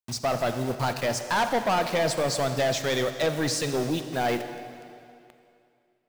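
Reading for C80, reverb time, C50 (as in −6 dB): 9.5 dB, 2.5 s, 8.5 dB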